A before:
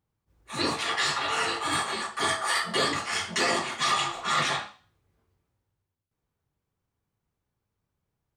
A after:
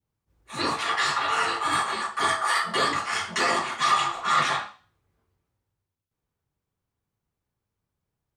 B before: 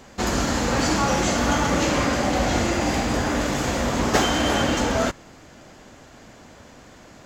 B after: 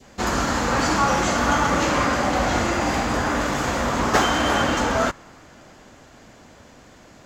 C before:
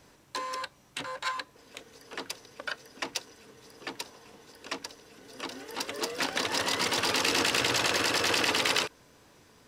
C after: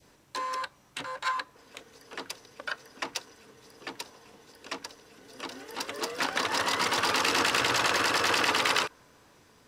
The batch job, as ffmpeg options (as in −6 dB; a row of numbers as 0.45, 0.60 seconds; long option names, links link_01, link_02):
-af "adynamicequalizer=threshold=0.01:dfrequency=1200:dqfactor=1.1:tfrequency=1200:tqfactor=1.1:attack=5:release=100:ratio=0.375:range=3.5:mode=boostabove:tftype=bell,volume=-1.5dB"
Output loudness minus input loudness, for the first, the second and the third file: +2.0, +1.0, +1.0 LU